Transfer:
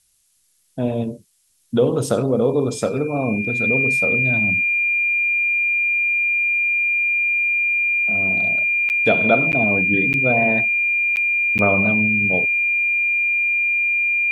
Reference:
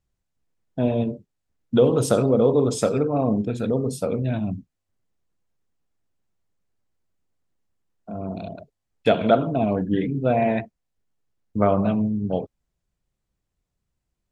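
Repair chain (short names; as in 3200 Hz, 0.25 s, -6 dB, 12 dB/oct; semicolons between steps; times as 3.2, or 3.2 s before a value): notch 2400 Hz, Q 30; interpolate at 8.89/9.52/10.13/11.16/11.58, 9.5 ms; expander -22 dBFS, range -21 dB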